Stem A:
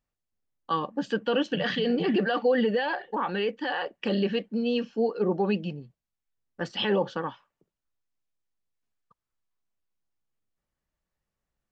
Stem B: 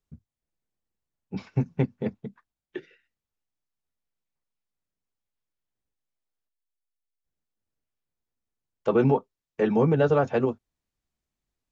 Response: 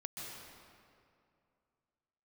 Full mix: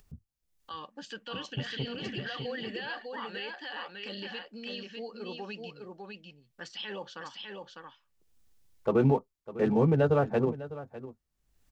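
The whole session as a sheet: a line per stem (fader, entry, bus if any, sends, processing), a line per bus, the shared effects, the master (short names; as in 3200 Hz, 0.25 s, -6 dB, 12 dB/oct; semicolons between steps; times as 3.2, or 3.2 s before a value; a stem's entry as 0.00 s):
-8.5 dB, 0.00 s, no send, echo send -4 dB, tilt shelf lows -9 dB, about 1400 Hz; limiter -21 dBFS, peak gain reduction 9.5 dB
-4.0 dB, 0.00 s, no send, echo send -15.5 dB, Wiener smoothing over 15 samples; low shelf 87 Hz +10.5 dB; auto duck -10 dB, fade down 0.40 s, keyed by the first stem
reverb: off
echo: echo 0.602 s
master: upward compressor, threshold -49 dBFS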